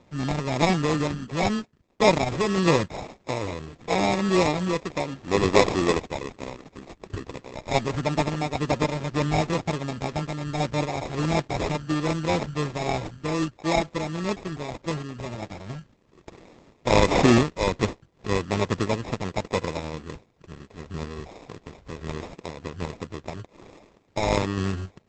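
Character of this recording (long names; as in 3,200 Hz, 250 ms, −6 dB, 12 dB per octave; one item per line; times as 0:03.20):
aliases and images of a low sample rate 1,500 Hz, jitter 0%
sample-and-hold tremolo
Opus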